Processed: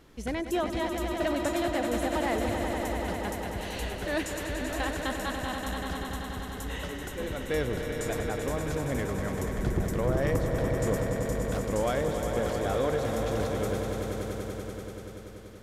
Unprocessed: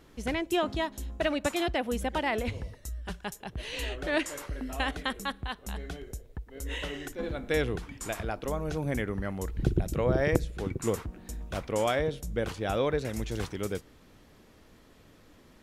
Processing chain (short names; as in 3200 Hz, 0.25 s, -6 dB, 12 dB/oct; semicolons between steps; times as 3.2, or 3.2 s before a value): dynamic EQ 2700 Hz, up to -6 dB, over -48 dBFS, Q 1.7; swelling echo 96 ms, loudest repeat 5, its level -9 dB; soft clip -18.5 dBFS, distortion -18 dB